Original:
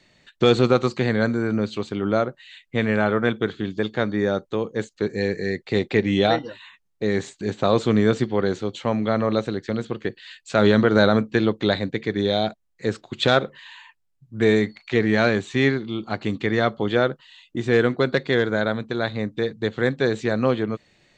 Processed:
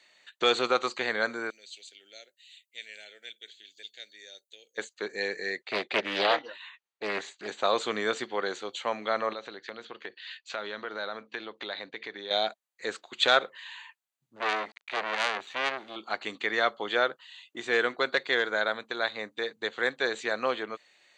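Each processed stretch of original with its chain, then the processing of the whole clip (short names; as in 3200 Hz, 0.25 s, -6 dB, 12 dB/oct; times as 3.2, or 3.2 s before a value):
1.5–4.78 Butterworth band-stop 1100 Hz, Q 0.66 + differentiator
5.63–7.48 LPF 5400 Hz + Doppler distortion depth 0.58 ms
9.33–12.31 LPF 5600 Hz 24 dB/oct + compressor 3:1, threshold -28 dBFS
14.36–15.96 sample gate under -42 dBFS + air absorption 150 m + core saturation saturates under 2400 Hz
whole clip: Bessel high-pass 880 Hz, order 2; notch 5300 Hz, Q 6.8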